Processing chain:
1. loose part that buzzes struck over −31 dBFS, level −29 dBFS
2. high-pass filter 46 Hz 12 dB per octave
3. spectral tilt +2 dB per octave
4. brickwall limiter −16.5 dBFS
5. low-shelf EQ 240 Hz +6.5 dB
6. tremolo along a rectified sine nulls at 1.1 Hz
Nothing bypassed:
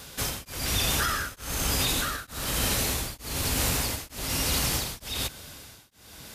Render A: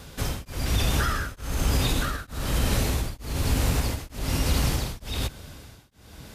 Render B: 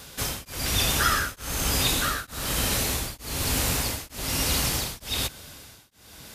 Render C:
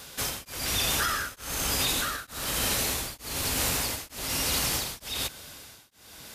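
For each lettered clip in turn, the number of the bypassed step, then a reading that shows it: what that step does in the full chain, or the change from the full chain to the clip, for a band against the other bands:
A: 3, 125 Hz band +7.5 dB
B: 4, change in crest factor +3.5 dB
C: 5, 125 Hz band −5.0 dB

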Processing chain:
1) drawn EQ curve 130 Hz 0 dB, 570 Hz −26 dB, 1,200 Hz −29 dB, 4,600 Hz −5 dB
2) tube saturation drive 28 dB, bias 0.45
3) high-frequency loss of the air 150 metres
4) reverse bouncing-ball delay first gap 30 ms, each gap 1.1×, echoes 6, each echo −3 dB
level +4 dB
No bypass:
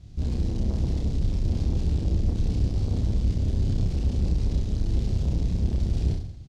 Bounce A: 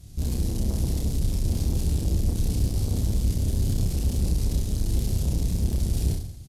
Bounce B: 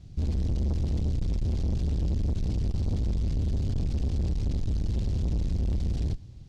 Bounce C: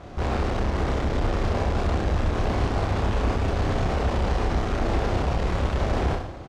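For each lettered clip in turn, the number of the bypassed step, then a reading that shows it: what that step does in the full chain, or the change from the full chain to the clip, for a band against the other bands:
3, 4 kHz band +5.0 dB
4, echo-to-direct ratio 0.0 dB to none audible
1, 1 kHz band +16.5 dB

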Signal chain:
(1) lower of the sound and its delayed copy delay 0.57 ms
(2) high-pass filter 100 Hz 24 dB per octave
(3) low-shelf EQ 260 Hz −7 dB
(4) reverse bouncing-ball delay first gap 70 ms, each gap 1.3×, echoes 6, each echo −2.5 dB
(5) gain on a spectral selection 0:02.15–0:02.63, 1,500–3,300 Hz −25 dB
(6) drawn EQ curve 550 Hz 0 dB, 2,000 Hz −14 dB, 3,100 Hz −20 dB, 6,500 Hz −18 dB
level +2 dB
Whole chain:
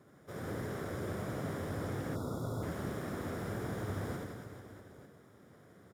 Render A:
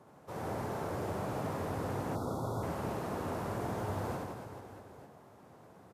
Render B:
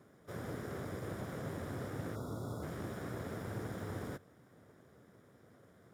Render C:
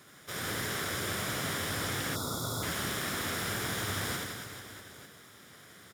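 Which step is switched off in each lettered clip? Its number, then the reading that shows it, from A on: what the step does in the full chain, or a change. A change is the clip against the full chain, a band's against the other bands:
1, 1 kHz band +6.5 dB
4, change in momentary loudness spread +5 LU
6, 4 kHz band +15.5 dB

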